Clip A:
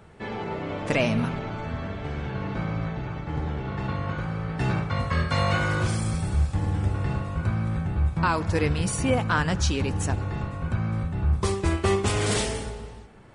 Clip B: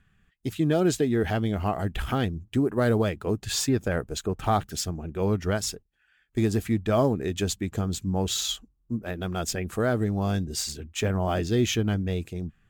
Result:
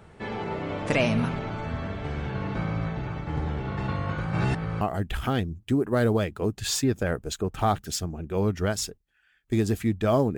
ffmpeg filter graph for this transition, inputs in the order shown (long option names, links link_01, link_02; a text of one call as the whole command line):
ffmpeg -i cue0.wav -i cue1.wav -filter_complex "[0:a]apad=whole_dur=10.37,atrim=end=10.37,asplit=2[link_01][link_02];[link_01]atrim=end=4.332[link_03];[link_02]atrim=start=4.328:end=4.812,asetpts=PTS-STARTPTS,areverse[link_04];[1:a]atrim=start=1.658:end=7.22[link_05];[link_03][link_04]acrossfade=duration=0.004:curve1=hsin:curve2=hsin[link_06];[link_06][link_05]acrossfade=duration=0.004:curve1=hsin:curve2=hsin" out.wav